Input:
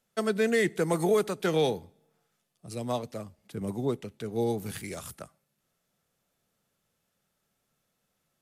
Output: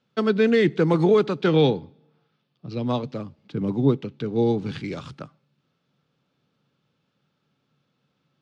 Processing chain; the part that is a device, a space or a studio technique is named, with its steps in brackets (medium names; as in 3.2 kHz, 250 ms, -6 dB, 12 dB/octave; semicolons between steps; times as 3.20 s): guitar cabinet (cabinet simulation 94–4400 Hz, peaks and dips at 140 Hz +9 dB, 280 Hz +7 dB, 670 Hz -7 dB, 1.9 kHz -6 dB); 1.48–2.86 s: low-pass 5.5 kHz 24 dB/octave; trim +6.5 dB